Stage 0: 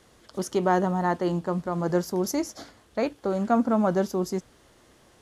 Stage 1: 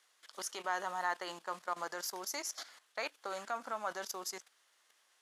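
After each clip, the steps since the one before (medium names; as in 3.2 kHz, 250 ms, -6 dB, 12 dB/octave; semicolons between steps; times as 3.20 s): level held to a coarse grid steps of 14 dB; high-pass 1.3 kHz 12 dB/octave; trim +3.5 dB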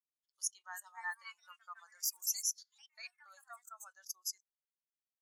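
ever faster or slower copies 423 ms, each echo +4 st, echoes 3, each echo -6 dB; differentiator; spectral contrast expander 2.5:1; trim +5.5 dB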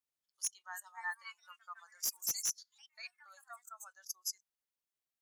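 wavefolder -27.5 dBFS; trim +1 dB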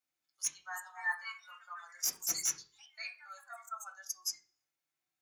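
reverberation RT60 0.40 s, pre-delay 3 ms, DRR -2.5 dB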